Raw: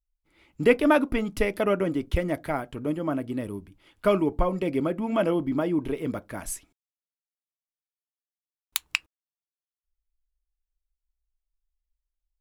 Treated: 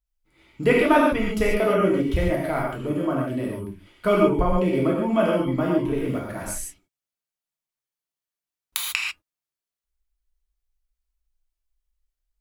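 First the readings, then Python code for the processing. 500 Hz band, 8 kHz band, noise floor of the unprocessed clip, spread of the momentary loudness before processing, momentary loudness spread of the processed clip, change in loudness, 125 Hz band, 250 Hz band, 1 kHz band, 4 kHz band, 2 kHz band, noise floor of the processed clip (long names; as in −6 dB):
+4.0 dB, +4.0 dB, below −85 dBFS, 12 LU, 12 LU, +3.5 dB, +5.5 dB, +3.5 dB, +5.5 dB, +4.0 dB, +4.0 dB, below −85 dBFS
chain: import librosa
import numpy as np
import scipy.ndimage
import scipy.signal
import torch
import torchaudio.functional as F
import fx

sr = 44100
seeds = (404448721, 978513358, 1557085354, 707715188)

y = fx.rev_gated(x, sr, seeds[0], gate_ms=170, shape='flat', drr_db=-3.5)
y = F.gain(torch.from_numpy(y), -1.0).numpy()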